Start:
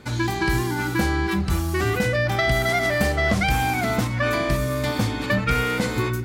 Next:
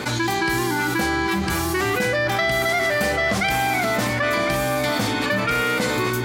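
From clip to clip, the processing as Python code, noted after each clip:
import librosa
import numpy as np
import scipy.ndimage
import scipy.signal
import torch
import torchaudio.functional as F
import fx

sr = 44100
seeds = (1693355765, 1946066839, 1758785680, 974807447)

y = fx.highpass(x, sr, hz=330.0, slope=6)
y = y + 10.0 ** (-10.5 / 20.0) * np.pad(y, (int(1054 * sr / 1000.0), 0))[:len(y)]
y = fx.env_flatten(y, sr, amount_pct=70)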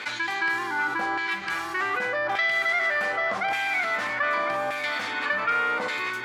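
y = fx.filter_lfo_bandpass(x, sr, shape='saw_down', hz=0.85, low_hz=970.0, high_hz=2300.0, q=1.3)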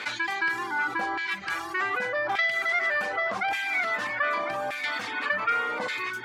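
y = fx.dereverb_blind(x, sr, rt60_s=0.91)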